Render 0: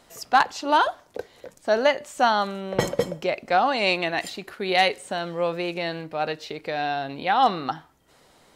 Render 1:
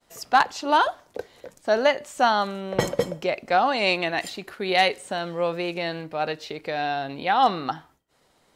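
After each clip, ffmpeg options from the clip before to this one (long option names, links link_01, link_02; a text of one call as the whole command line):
ffmpeg -i in.wav -af "agate=range=-33dB:threshold=-50dB:ratio=3:detection=peak" out.wav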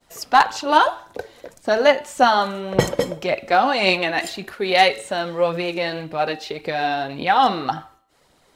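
ffmpeg -i in.wav -af "bandreject=frequency=111.1:width_type=h:width=4,bandreject=frequency=222.2:width_type=h:width=4,bandreject=frequency=333.3:width_type=h:width=4,bandreject=frequency=444.4:width_type=h:width=4,bandreject=frequency=555.5:width_type=h:width=4,bandreject=frequency=666.6:width_type=h:width=4,bandreject=frequency=777.7:width_type=h:width=4,bandreject=frequency=888.8:width_type=h:width=4,bandreject=frequency=999.9:width_type=h:width=4,bandreject=frequency=1111:width_type=h:width=4,bandreject=frequency=1222.1:width_type=h:width=4,bandreject=frequency=1333.2:width_type=h:width=4,bandreject=frequency=1444.3:width_type=h:width=4,bandreject=frequency=1555.4:width_type=h:width=4,bandreject=frequency=1666.5:width_type=h:width=4,bandreject=frequency=1777.6:width_type=h:width=4,bandreject=frequency=1888.7:width_type=h:width=4,bandreject=frequency=1999.8:width_type=h:width=4,bandreject=frequency=2110.9:width_type=h:width=4,bandreject=frequency=2222:width_type=h:width=4,bandreject=frequency=2333.1:width_type=h:width=4,bandreject=frequency=2444.2:width_type=h:width=4,bandreject=frequency=2555.3:width_type=h:width=4,bandreject=frequency=2666.4:width_type=h:width=4,bandreject=frequency=2777.5:width_type=h:width=4,bandreject=frequency=2888.6:width_type=h:width=4,bandreject=frequency=2999.7:width_type=h:width=4,bandreject=frequency=3110.8:width_type=h:width=4,bandreject=frequency=3221.9:width_type=h:width=4,bandreject=frequency=3333:width_type=h:width=4,bandreject=frequency=3444.1:width_type=h:width=4,bandreject=frequency=3555.2:width_type=h:width=4,bandreject=frequency=3666.3:width_type=h:width=4,bandreject=frequency=3777.4:width_type=h:width=4,bandreject=frequency=3888.5:width_type=h:width=4,bandreject=frequency=3999.6:width_type=h:width=4,bandreject=frequency=4110.7:width_type=h:width=4,bandreject=frequency=4221.8:width_type=h:width=4,aphaser=in_gain=1:out_gain=1:delay=4.1:decay=0.39:speed=1.8:type=triangular,volume=4dB" out.wav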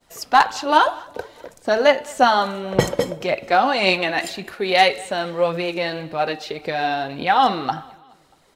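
ffmpeg -i in.wav -af "aecho=1:1:212|424|636:0.0631|0.0328|0.0171" out.wav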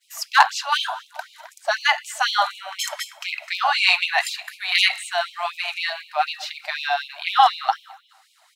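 ffmpeg -i in.wav -af "afftfilt=real='re*gte(b*sr/1024,580*pow(2300/580,0.5+0.5*sin(2*PI*4*pts/sr)))':imag='im*gte(b*sr/1024,580*pow(2300/580,0.5+0.5*sin(2*PI*4*pts/sr)))':win_size=1024:overlap=0.75,volume=3dB" out.wav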